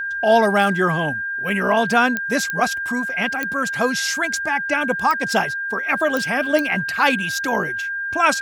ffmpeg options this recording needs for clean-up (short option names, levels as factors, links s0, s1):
-af "adeclick=t=4,bandreject=f=1600:w=30"